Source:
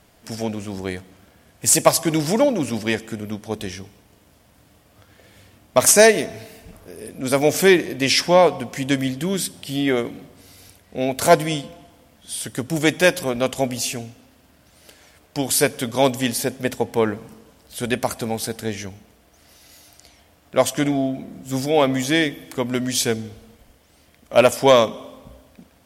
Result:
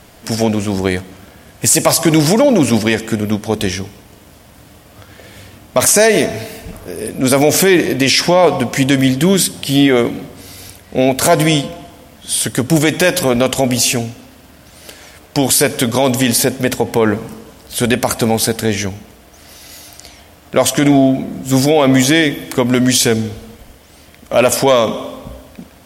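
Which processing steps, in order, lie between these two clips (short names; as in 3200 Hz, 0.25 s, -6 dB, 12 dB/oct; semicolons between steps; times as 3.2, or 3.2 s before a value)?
maximiser +13.5 dB; gain -1 dB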